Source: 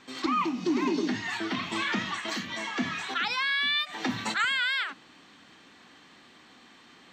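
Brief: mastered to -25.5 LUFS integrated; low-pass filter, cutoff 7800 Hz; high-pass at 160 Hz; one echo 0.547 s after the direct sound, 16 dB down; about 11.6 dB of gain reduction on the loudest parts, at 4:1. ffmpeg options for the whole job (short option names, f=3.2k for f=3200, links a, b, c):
-af "highpass=160,lowpass=7.8k,acompressor=threshold=-38dB:ratio=4,aecho=1:1:547:0.158,volume=13dB"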